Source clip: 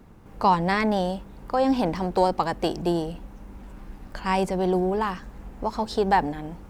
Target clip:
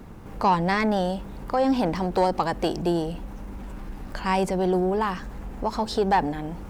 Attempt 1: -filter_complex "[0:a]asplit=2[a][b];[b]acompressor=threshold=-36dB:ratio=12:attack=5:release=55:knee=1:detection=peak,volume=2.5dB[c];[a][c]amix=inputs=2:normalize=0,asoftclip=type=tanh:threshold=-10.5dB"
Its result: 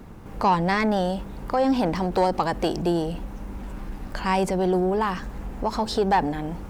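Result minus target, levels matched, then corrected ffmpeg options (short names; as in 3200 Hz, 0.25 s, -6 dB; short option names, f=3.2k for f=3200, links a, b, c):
compressor: peak gain reduction -6 dB
-filter_complex "[0:a]asplit=2[a][b];[b]acompressor=threshold=-42.5dB:ratio=12:attack=5:release=55:knee=1:detection=peak,volume=2.5dB[c];[a][c]amix=inputs=2:normalize=0,asoftclip=type=tanh:threshold=-10.5dB"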